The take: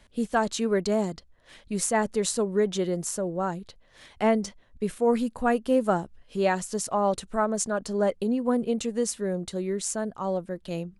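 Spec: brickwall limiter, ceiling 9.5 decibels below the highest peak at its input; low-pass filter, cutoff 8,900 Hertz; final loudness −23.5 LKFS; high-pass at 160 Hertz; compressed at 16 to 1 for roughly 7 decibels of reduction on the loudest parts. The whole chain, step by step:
high-pass filter 160 Hz
low-pass filter 8,900 Hz
downward compressor 16 to 1, threshold −25 dBFS
level +9.5 dB
brickwall limiter −13 dBFS

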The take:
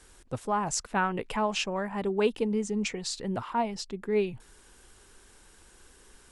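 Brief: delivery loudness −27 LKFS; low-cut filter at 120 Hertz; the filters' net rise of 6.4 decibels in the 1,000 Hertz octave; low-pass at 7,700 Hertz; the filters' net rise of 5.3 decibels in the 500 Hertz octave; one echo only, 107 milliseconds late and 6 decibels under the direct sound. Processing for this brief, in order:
high-pass filter 120 Hz
low-pass filter 7,700 Hz
parametric band 500 Hz +5.5 dB
parametric band 1,000 Hz +6 dB
single-tap delay 107 ms −6 dB
level −2 dB

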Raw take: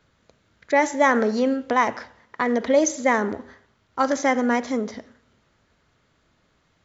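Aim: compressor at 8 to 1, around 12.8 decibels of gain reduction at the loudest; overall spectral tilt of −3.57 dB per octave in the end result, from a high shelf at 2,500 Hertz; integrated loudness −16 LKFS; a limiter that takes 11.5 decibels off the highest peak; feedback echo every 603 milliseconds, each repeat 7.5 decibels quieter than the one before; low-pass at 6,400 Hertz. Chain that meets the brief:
low-pass filter 6,400 Hz
high-shelf EQ 2,500 Hz +4 dB
downward compressor 8 to 1, threshold −26 dBFS
brickwall limiter −23.5 dBFS
repeating echo 603 ms, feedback 42%, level −7.5 dB
level +18.5 dB

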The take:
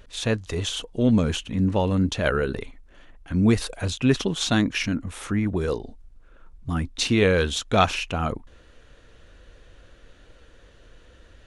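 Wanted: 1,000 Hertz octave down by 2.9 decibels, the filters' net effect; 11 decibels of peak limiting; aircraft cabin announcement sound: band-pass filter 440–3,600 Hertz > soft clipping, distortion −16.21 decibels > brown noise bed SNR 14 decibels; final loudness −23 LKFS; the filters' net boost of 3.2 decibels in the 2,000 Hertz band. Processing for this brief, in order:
parametric band 1,000 Hz −6.5 dB
parametric band 2,000 Hz +7 dB
brickwall limiter −15 dBFS
band-pass filter 440–3,600 Hz
soft clipping −21.5 dBFS
brown noise bed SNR 14 dB
level +9 dB

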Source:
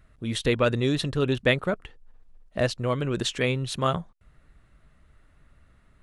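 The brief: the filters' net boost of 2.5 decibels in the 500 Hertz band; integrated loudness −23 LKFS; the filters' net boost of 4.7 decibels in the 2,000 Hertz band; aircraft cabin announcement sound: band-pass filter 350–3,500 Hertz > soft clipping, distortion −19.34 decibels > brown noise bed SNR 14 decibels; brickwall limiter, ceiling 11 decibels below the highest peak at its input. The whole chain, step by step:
parametric band 500 Hz +4 dB
parametric band 2,000 Hz +6 dB
brickwall limiter −16 dBFS
band-pass filter 350–3,500 Hz
soft clipping −18 dBFS
brown noise bed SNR 14 dB
level +8 dB

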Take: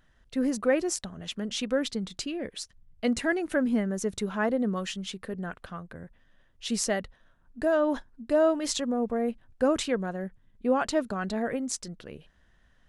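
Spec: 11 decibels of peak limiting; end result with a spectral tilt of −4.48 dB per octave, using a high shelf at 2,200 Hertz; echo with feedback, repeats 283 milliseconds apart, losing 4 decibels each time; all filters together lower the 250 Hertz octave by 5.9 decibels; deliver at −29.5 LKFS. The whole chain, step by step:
parametric band 250 Hz −7 dB
high-shelf EQ 2,200 Hz −9 dB
brickwall limiter −26.5 dBFS
repeating echo 283 ms, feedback 63%, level −4 dB
level +6 dB

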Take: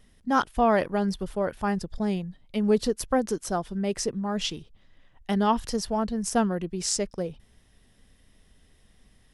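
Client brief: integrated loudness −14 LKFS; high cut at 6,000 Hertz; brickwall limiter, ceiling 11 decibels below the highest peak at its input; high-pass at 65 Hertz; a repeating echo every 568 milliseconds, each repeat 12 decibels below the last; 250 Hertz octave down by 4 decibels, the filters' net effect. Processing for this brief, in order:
high-pass filter 65 Hz
low-pass filter 6,000 Hz
parametric band 250 Hz −5 dB
brickwall limiter −22.5 dBFS
repeating echo 568 ms, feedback 25%, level −12 dB
level +18.5 dB

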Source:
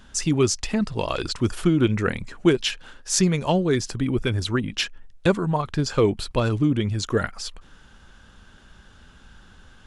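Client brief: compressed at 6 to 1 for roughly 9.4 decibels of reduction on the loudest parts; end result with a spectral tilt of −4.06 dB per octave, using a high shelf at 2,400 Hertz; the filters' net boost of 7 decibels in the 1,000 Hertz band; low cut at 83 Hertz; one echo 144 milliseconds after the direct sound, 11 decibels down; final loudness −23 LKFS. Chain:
high-pass filter 83 Hz
parametric band 1,000 Hz +8 dB
high-shelf EQ 2,400 Hz +3.5 dB
downward compressor 6 to 1, threshold −22 dBFS
single-tap delay 144 ms −11 dB
level +4 dB

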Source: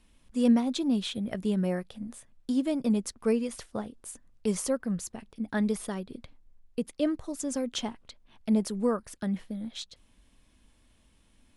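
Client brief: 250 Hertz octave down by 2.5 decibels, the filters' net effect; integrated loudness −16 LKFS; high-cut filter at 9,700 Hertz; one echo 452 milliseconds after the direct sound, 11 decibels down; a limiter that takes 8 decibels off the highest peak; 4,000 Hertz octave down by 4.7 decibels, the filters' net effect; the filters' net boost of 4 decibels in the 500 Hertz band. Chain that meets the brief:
low-pass filter 9,700 Hz
parametric band 250 Hz −4 dB
parametric band 500 Hz +5.5 dB
parametric band 4,000 Hz −6 dB
brickwall limiter −21.5 dBFS
single-tap delay 452 ms −11 dB
level +17.5 dB

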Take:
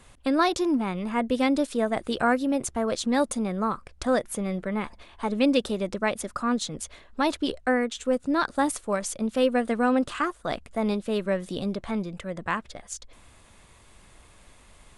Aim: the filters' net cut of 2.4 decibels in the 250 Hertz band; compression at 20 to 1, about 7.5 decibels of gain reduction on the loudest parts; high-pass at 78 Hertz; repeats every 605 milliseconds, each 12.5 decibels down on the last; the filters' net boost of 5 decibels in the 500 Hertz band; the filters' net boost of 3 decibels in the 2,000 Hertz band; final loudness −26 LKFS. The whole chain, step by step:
high-pass filter 78 Hz
parametric band 250 Hz −4.5 dB
parametric band 500 Hz +6.5 dB
parametric band 2,000 Hz +3.5 dB
downward compressor 20 to 1, threshold −21 dBFS
repeating echo 605 ms, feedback 24%, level −12.5 dB
level +2 dB

